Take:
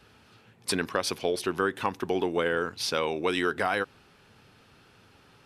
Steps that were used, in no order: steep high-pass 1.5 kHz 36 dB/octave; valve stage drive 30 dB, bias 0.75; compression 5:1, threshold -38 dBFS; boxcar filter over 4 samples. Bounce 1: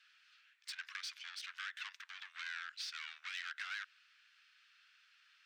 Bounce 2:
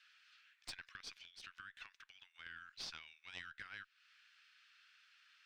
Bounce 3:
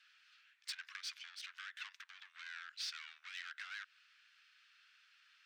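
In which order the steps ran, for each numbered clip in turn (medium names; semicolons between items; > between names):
valve stage > steep high-pass > compression > boxcar filter; compression > steep high-pass > valve stage > boxcar filter; valve stage > boxcar filter > compression > steep high-pass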